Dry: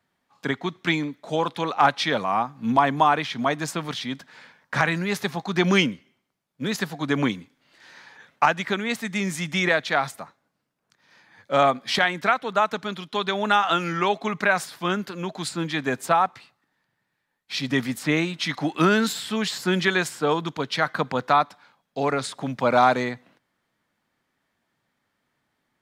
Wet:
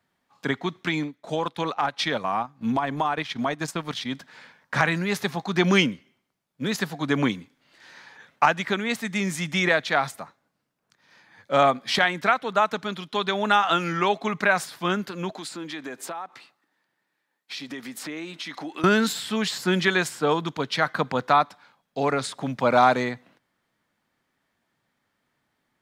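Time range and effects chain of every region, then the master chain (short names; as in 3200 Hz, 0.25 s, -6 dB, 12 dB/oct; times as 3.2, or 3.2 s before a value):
0.79–4.14 compressor 4:1, threshold -20 dBFS + transient shaper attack 0 dB, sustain -10 dB
15.3–18.84 compressor, threshold -31 dBFS + HPF 250 Hz + bell 320 Hz +4 dB 0.34 oct
whole clip: dry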